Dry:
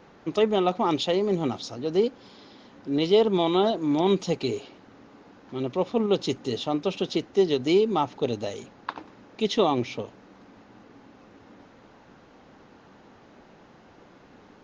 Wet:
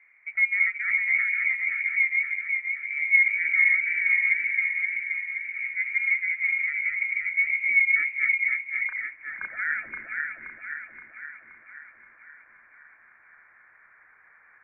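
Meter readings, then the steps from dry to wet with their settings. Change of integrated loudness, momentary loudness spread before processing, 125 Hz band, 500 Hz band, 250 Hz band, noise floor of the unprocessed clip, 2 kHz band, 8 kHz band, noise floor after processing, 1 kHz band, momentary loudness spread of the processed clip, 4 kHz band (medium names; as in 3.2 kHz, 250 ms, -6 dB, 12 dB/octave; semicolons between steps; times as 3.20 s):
+2.0 dB, 14 LU, under -30 dB, under -35 dB, under -35 dB, -54 dBFS, +22.0 dB, no reading, -57 dBFS, -17.0 dB, 15 LU, under -30 dB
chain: backward echo that repeats 262 ms, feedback 76%, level -2 dB; band-pass sweep 470 Hz -> 1 kHz, 8.79–9.45 s; frequency inversion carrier 2.6 kHz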